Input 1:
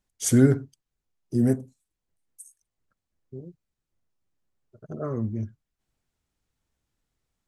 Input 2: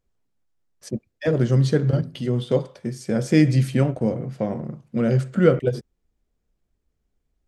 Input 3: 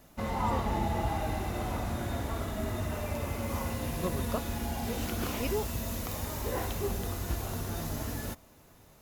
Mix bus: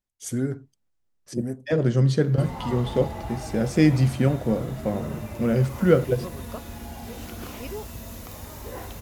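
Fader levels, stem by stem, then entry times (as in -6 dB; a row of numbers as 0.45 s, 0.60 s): -9.0 dB, -1.5 dB, -3.5 dB; 0.00 s, 0.45 s, 2.20 s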